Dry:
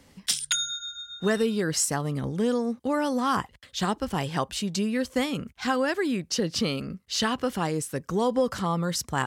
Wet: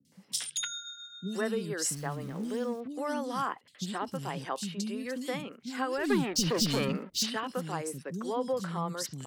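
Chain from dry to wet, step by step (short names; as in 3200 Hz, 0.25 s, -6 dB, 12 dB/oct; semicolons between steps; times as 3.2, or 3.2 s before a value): HPF 130 Hz 24 dB/oct; 1.8–2.8 sample gate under -40.5 dBFS; 5.98–7.18 sample leveller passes 3; three bands offset in time lows, highs, mids 50/120 ms, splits 290/3300 Hz; gain -6 dB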